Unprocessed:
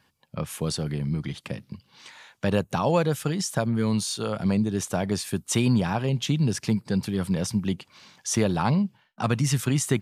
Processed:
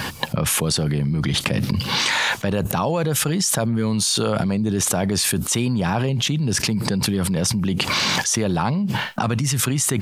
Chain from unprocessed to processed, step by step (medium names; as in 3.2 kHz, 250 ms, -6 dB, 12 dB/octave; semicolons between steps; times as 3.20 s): level flattener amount 100%; trim -2 dB